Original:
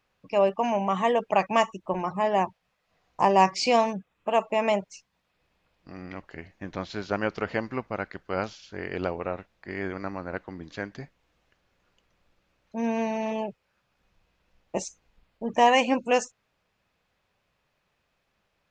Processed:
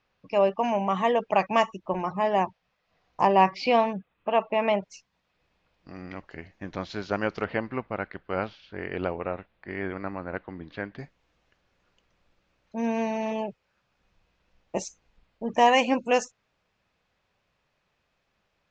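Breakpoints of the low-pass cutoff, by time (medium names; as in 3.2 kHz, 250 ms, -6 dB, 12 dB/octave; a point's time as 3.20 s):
low-pass 24 dB/octave
6 kHz
from 3.27 s 3.9 kHz
from 4.83 s 6.8 kHz
from 7.44 s 3.7 kHz
from 10.99 s 7.4 kHz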